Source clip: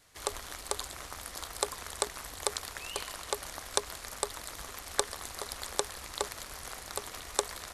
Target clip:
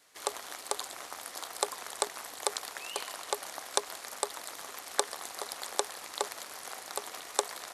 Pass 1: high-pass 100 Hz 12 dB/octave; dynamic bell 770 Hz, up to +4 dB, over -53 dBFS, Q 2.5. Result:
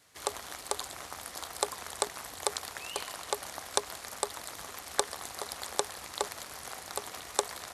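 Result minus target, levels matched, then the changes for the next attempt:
125 Hz band +12.5 dB
change: high-pass 280 Hz 12 dB/octave

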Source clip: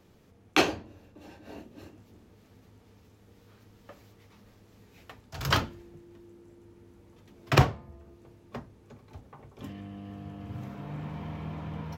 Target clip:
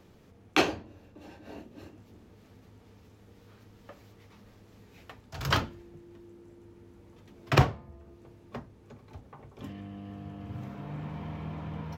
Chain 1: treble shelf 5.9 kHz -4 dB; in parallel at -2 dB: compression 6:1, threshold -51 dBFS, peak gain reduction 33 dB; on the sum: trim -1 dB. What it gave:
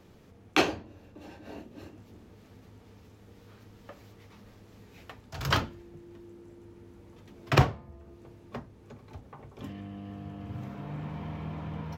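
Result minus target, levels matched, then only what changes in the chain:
compression: peak gain reduction -7.5 dB
change: compression 6:1, threshold -60 dBFS, peak gain reduction 40.5 dB

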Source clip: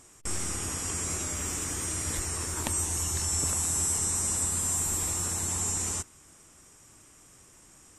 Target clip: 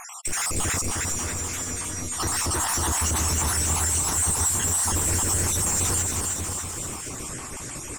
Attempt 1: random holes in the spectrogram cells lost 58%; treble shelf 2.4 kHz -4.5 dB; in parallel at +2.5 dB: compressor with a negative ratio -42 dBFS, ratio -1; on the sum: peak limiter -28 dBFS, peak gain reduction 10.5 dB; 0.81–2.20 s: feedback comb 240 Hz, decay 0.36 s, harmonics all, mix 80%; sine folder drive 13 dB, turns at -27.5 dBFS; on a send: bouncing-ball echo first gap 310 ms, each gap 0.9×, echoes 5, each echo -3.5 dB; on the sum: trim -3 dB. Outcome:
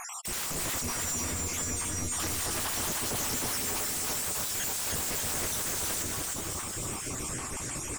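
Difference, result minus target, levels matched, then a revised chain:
sine folder: distortion +22 dB
random holes in the spectrogram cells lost 58%; treble shelf 2.4 kHz -4.5 dB; in parallel at +2.5 dB: compressor with a negative ratio -42 dBFS, ratio -1; on the sum: peak limiter -28 dBFS, peak gain reduction 10.5 dB; 0.81–2.20 s: feedback comb 240 Hz, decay 0.36 s, harmonics all, mix 80%; sine folder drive 13 dB, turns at -19.5 dBFS; on a send: bouncing-ball echo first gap 310 ms, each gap 0.9×, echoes 5, each echo -3.5 dB; on the sum: trim -3 dB

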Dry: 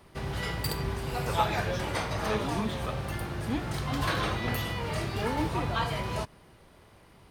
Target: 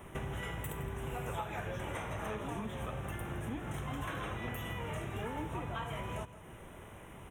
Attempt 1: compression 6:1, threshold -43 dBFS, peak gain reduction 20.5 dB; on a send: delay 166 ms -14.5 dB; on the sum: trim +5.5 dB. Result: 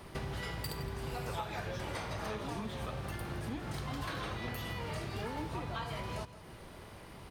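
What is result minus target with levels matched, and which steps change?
4 kHz band +4.5 dB
add after compression: Butterworth band-stop 4.6 kHz, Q 1.5

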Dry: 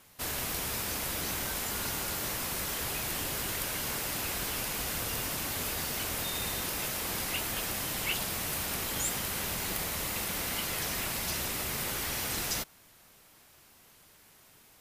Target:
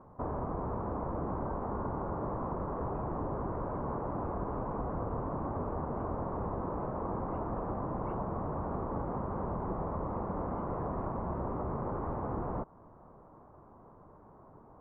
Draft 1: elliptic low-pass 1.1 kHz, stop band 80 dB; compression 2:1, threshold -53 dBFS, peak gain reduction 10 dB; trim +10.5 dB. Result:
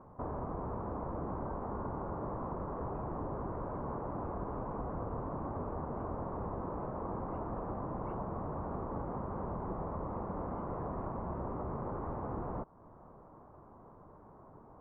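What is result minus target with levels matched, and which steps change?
compression: peak gain reduction +3 dB
change: compression 2:1, threshold -46.5 dBFS, peak gain reduction 6.5 dB

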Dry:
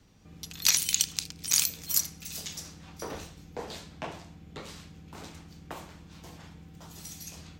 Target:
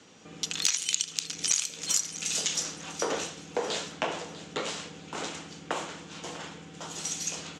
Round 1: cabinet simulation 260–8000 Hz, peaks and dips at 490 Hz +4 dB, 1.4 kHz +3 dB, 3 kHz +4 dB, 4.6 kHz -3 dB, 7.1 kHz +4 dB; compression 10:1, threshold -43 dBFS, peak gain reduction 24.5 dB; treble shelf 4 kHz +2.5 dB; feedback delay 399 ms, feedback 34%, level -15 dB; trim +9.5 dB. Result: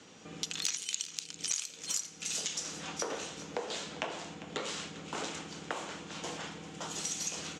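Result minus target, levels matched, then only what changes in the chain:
compression: peak gain reduction +7.5 dB; echo 247 ms early
change: compression 10:1, threshold -34.5 dBFS, peak gain reduction 17 dB; change: feedback delay 646 ms, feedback 34%, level -15 dB

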